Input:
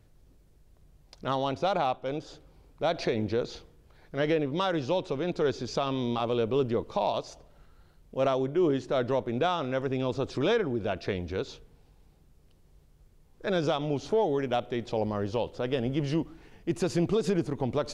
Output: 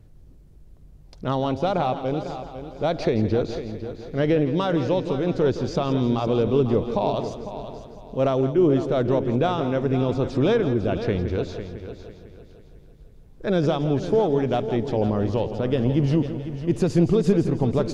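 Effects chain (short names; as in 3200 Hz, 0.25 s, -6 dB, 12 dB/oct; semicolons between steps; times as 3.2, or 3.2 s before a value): low shelf 470 Hz +10.5 dB; on a send: multi-head echo 0.167 s, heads first and third, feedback 47%, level -12 dB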